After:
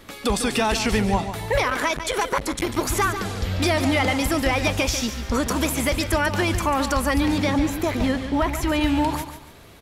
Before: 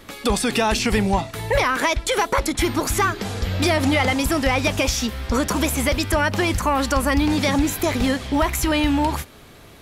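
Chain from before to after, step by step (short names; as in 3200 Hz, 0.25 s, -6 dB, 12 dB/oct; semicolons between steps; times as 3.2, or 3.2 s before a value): 7.38–8.81 high shelf 4000 Hz -8 dB; feedback echo 0.143 s, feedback 30%, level -10 dB; 1.63–2.77 core saturation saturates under 640 Hz; gain -2 dB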